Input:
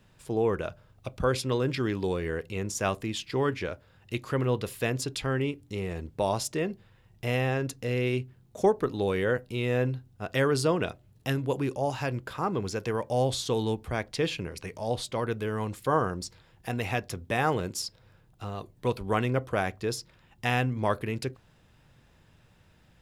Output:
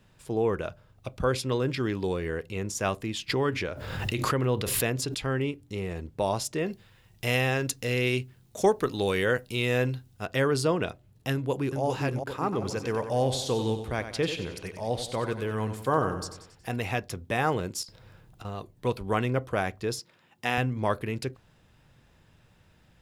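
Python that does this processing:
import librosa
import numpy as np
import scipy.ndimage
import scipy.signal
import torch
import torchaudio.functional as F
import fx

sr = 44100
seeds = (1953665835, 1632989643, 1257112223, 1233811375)

y = fx.pre_swell(x, sr, db_per_s=34.0, at=(3.28, 5.14), fade=0.02)
y = fx.high_shelf(y, sr, hz=2000.0, db=10.0, at=(6.66, 10.26))
y = fx.echo_throw(y, sr, start_s=11.32, length_s=0.51, ms=400, feedback_pct=55, wet_db=-4.5)
y = fx.echo_feedback(y, sr, ms=92, feedback_pct=49, wet_db=-10.0, at=(12.43, 16.76))
y = fx.over_compress(y, sr, threshold_db=-42.0, ratio=-0.5, at=(17.83, 18.45))
y = fx.highpass(y, sr, hz=200.0, slope=12, at=(19.99, 20.58))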